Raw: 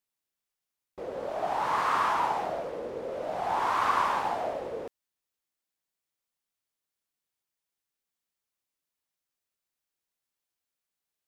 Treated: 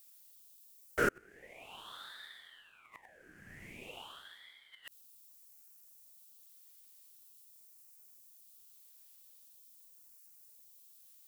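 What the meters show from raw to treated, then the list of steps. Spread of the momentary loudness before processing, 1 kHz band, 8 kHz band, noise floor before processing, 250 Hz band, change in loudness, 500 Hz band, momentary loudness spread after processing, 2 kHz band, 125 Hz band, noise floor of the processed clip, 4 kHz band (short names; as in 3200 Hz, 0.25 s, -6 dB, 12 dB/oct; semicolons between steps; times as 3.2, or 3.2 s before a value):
12 LU, -20.0 dB, -3.5 dB, under -85 dBFS, -5.0 dB, -12.5 dB, -11.0 dB, 9 LU, -5.0 dB, -4.0 dB, -62 dBFS, -6.5 dB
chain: flipped gate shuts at -28 dBFS, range -36 dB; Butterworth band-stop 3400 Hz, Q 1.1; RIAA curve recording; ring modulator with a swept carrier 1800 Hz, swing 50%, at 0.44 Hz; gain +15 dB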